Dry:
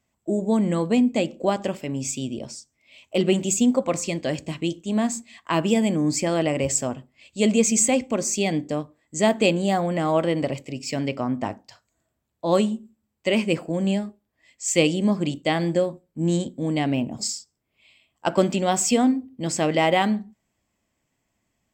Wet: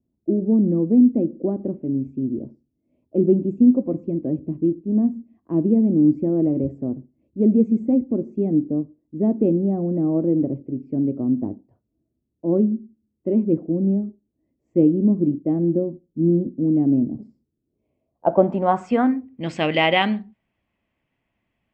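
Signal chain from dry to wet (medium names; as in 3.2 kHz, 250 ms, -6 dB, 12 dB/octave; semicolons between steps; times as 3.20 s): low-pass sweep 320 Hz -> 2.8 kHz, 17.65–19.53 s; tape noise reduction on one side only decoder only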